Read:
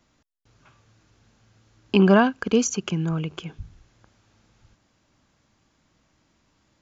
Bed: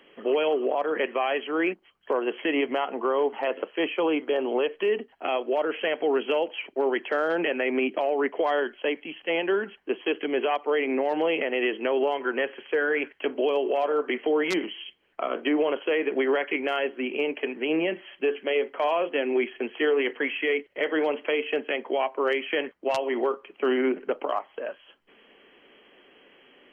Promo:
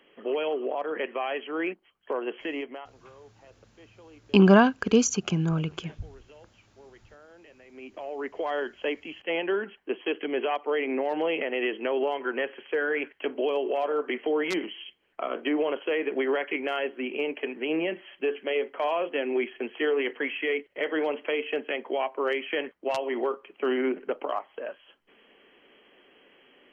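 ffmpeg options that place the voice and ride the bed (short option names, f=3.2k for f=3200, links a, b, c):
-filter_complex "[0:a]adelay=2400,volume=-0.5dB[a];[1:a]volume=20.5dB,afade=t=out:st=2.32:d=0.64:silence=0.0707946,afade=t=in:st=7.7:d=1.12:silence=0.0562341[b];[a][b]amix=inputs=2:normalize=0"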